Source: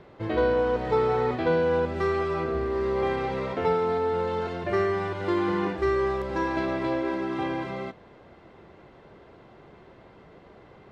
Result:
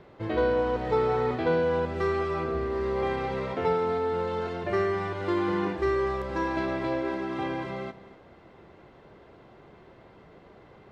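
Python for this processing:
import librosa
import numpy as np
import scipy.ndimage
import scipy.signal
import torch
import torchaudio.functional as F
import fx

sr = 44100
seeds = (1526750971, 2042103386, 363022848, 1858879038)

p1 = x + fx.echo_single(x, sr, ms=244, db=-17.0, dry=0)
y = p1 * librosa.db_to_amplitude(-1.5)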